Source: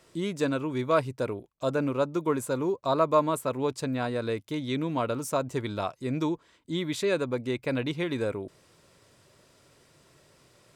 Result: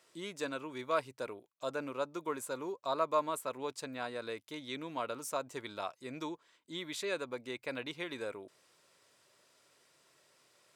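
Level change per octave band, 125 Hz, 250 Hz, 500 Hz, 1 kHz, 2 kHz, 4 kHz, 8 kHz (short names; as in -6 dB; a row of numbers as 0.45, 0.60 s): -20.0, -14.0, -10.0, -7.0, -5.5, -5.0, -5.0 dB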